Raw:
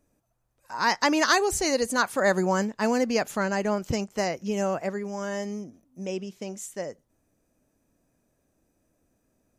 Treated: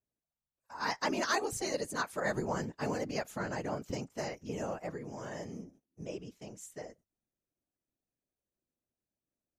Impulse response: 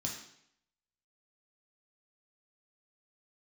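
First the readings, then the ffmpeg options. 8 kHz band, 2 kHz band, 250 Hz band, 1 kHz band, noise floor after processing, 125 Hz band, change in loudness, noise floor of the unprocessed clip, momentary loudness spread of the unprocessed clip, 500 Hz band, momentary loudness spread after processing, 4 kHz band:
-10.5 dB, -10.5 dB, -11.5 dB, -10.0 dB, under -85 dBFS, -6.5 dB, -10.5 dB, -73 dBFS, 15 LU, -10.5 dB, 16 LU, -10.5 dB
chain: -af "agate=range=0.224:threshold=0.00316:ratio=16:detection=peak,afftfilt=real='hypot(re,im)*cos(2*PI*random(0))':imag='hypot(re,im)*sin(2*PI*random(1))':win_size=512:overlap=0.75,volume=0.596"

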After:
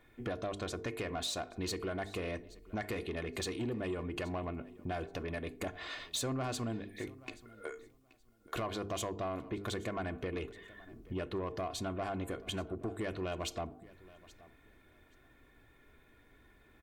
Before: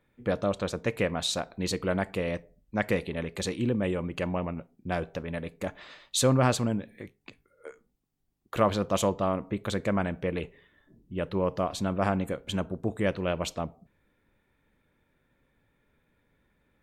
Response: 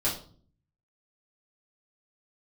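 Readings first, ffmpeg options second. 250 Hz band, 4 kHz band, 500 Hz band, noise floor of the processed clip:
-9.5 dB, -6.0 dB, -9.5 dB, -64 dBFS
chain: -filter_complex "[0:a]bandreject=f=50:t=h:w=6,bandreject=f=100:t=h:w=6,bandreject=f=150:t=h:w=6,bandreject=f=200:t=h:w=6,bandreject=f=250:t=h:w=6,bandreject=f=300:t=h:w=6,bandreject=f=350:t=h:w=6,bandreject=f=400:t=h:w=6,bandreject=f=450:t=h:w=6,aecho=1:1:2.8:0.55,asplit=2[s0][s1];[s1]alimiter=limit=0.119:level=0:latency=1:release=39,volume=1.12[s2];[s0][s2]amix=inputs=2:normalize=0,acompressor=threshold=0.0141:ratio=3,asoftclip=type=tanh:threshold=0.0335,asplit=2[s3][s4];[s4]aecho=0:1:827|1654:0.0944|0.017[s5];[s3][s5]amix=inputs=2:normalize=0"

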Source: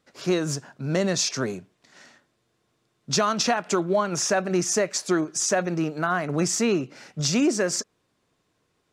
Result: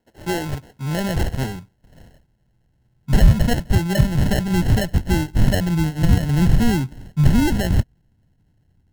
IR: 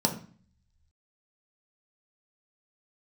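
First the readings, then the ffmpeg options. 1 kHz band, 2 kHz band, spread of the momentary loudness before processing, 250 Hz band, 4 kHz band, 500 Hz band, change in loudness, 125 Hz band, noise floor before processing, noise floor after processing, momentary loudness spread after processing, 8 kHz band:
-2.0 dB, +0.5 dB, 8 LU, +5.5 dB, -2.0 dB, -3.0 dB, +4.5 dB, +14.5 dB, -72 dBFS, -64 dBFS, 10 LU, -9.0 dB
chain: -af "acrusher=samples=37:mix=1:aa=0.000001,asubboost=boost=10.5:cutoff=140"

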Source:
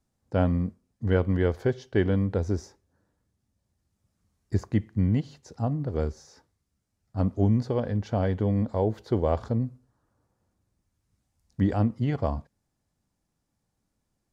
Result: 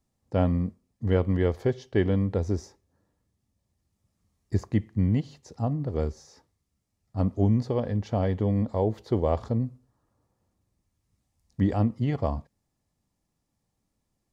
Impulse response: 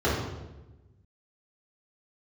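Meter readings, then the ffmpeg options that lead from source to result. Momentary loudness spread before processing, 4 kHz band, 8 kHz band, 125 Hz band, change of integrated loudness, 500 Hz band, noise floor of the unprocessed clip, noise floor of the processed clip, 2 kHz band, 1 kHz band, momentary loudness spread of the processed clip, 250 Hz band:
8 LU, 0.0 dB, no reading, 0.0 dB, 0.0 dB, 0.0 dB, -79 dBFS, -79 dBFS, -2.5 dB, 0.0 dB, 8 LU, 0.0 dB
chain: -af "bandreject=f=1500:w=7.1"

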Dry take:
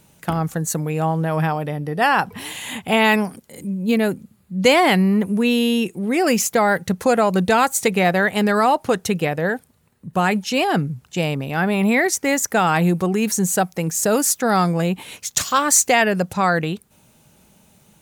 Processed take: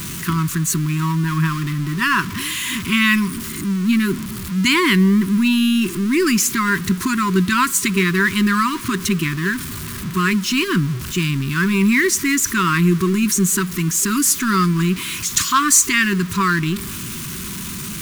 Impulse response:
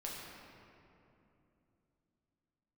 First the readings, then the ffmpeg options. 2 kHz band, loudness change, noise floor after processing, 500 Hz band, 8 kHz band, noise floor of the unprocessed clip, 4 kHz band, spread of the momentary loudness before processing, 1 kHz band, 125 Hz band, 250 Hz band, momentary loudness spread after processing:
+2.5 dB, +1.0 dB, -29 dBFS, -7.0 dB, +3.5 dB, -57 dBFS, +3.5 dB, 10 LU, -3.0 dB, +4.0 dB, +3.0 dB, 9 LU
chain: -filter_complex "[0:a]aeval=exprs='val(0)+0.5*0.0631*sgn(val(0))':c=same,asplit=2[s0][s1];[1:a]atrim=start_sample=2205,asetrate=61740,aresample=44100[s2];[s1][s2]afir=irnorm=-1:irlink=0,volume=0.0944[s3];[s0][s3]amix=inputs=2:normalize=0,afftfilt=real='re*(1-between(b*sr/4096,400,950))':imag='im*(1-between(b*sr/4096,400,950))':win_size=4096:overlap=0.75,acrusher=bits=6:mix=0:aa=0.000001,volume=1.12"

